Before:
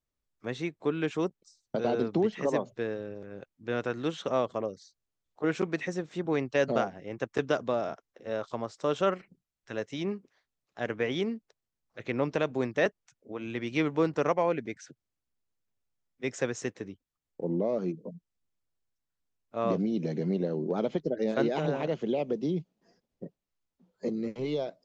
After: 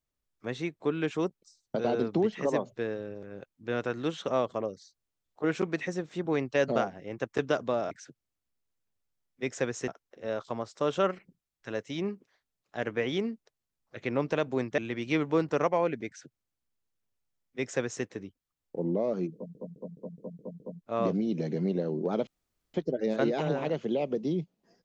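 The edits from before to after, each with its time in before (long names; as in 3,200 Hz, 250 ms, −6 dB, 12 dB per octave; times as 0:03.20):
0:12.81–0:13.43: remove
0:14.72–0:16.69: duplicate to 0:07.91
0:17.99: stutter in place 0.21 s, 7 plays
0:20.92: splice in room tone 0.47 s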